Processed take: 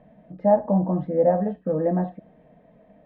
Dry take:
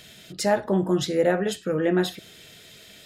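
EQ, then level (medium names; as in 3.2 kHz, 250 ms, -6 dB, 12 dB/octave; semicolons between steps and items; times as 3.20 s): Chebyshev low-pass 1.5 kHz, order 4; static phaser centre 380 Hz, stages 6; +5.0 dB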